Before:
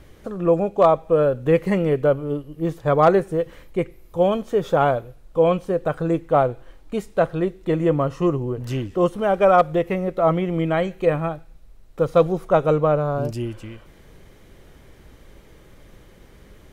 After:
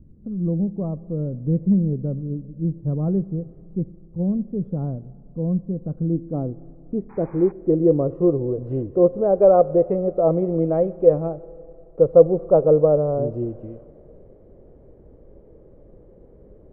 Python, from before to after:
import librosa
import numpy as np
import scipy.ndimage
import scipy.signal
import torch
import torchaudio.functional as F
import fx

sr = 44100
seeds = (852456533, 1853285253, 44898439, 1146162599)

y = fx.spec_paint(x, sr, seeds[0], shape='noise', start_s=7.09, length_s=0.43, low_hz=760.0, high_hz=2500.0, level_db=-26.0)
y = fx.filter_sweep_lowpass(y, sr, from_hz=210.0, to_hz=510.0, start_s=5.76, end_s=8.39, q=2.3)
y = fx.rev_spring(y, sr, rt60_s=3.2, pass_ms=(30, 47, 57), chirp_ms=35, drr_db=19.5)
y = y * librosa.db_to_amplitude(-2.0)